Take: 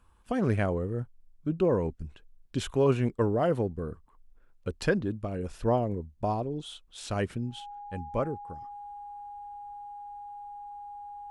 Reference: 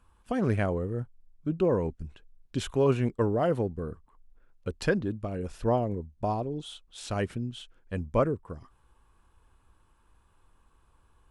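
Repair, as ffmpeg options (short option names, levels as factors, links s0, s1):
-af "bandreject=f=820:w=30,asetnsamples=n=441:p=0,asendcmd='7.6 volume volume 5dB',volume=1"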